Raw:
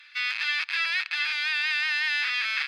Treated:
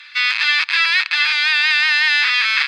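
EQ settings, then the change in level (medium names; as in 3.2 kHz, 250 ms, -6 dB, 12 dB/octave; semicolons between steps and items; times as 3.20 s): ten-band graphic EQ 1 kHz +11 dB, 2 kHz +5 dB, 4 kHz +8 dB, 8 kHz +8 dB; +2.0 dB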